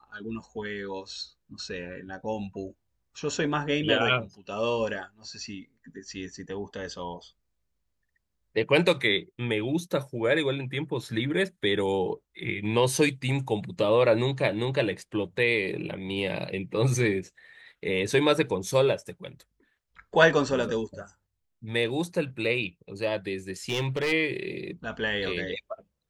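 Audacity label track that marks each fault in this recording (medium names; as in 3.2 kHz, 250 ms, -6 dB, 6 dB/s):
23.690000	24.130000	clipped -23 dBFS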